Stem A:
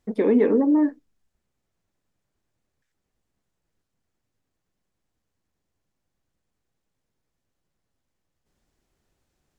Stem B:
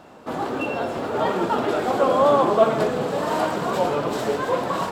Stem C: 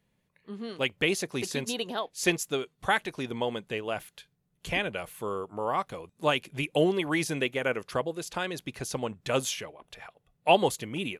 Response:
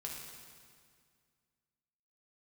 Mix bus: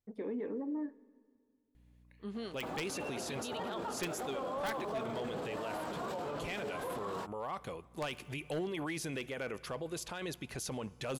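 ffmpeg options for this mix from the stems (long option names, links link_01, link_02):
-filter_complex "[0:a]equalizer=frequency=110:width_type=o:width=0.35:gain=14,volume=-19.5dB,asplit=2[link_01][link_02];[link_02]volume=-14dB[link_03];[1:a]adelay=2350,volume=-12.5dB[link_04];[2:a]aeval=exprs='val(0)+0.00112*(sin(2*PI*60*n/s)+sin(2*PI*2*60*n/s)/2+sin(2*PI*3*60*n/s)/3+sin(2*PI*4*60*n/s)/4+sin(2*PI*5*60*n/s)/5)':channel_layout=same,aeval=exprs='(mod(3.76*val(0)+1,2)-1)/3.76':channel_layout=same,adelay=1750,volume=-3dB,asplit=2[link_05][link_06];[link_06]volume=-21dB[link_07];[3:a]atrim=start_sample=2205[link_08];[link_03][link_07]amix=inputs=2:normalize=0[link_09];[link_09][link_08]afir=irnorm=-1:irlink=0[link_10];[link_01][link_04][link_05][link_10]amix=inputs=4:normalize=0,asoftclip=type=hard:threshold=-22.5dB,alimiter=level_in=7.5dB:limit=-24dB:level=0:latency=1:release=12,volume=-7.5dB"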